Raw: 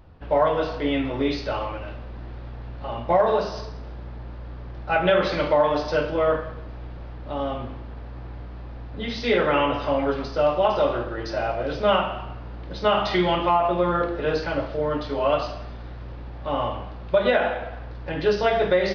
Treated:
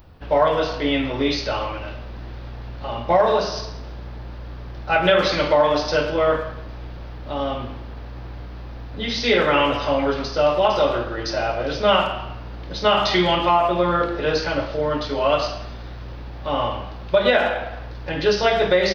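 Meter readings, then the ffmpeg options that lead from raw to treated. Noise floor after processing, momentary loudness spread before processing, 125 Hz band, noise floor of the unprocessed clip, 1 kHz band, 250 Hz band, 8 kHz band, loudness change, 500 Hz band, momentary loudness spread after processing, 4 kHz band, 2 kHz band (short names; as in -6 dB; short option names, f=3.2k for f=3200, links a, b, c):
-35 dBFS, 18 LU, +2.0 dB, -37 dBFS, +3.0 dB, +2.0 dB, n/a, +3.0 dB, +2.5 dB, 19 LU, +7.5 dB, +4.5 dB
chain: -filter_complex "[0:a]aemphasis=mode=production:type=75kf,asplit=2[a][b];[b]adelay=110,highpass=300,lowpass=3.4k,asoftclip=type=hard:threshold=-15.5dB,volume=-14dB[c];[a][c]amix=inputs=2:normalize=0,volume=2dB"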